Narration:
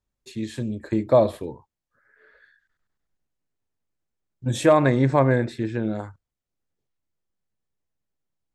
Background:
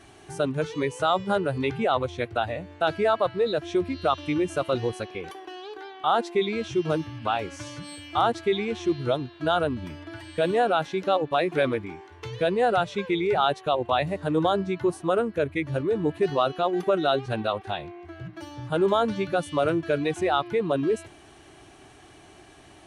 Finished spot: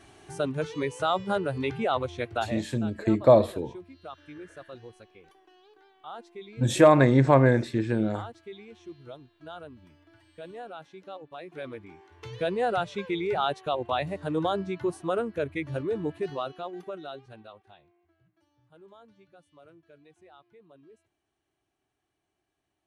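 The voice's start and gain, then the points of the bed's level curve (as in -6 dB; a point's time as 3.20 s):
2.15 s, 0.0 dB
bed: 2.58 s -3 dB
2.80 s -19 dB
11.37 s -19 dB
12.32 s -4.5 dB
15.94 s -4.5 dB
18.36 s -31 dB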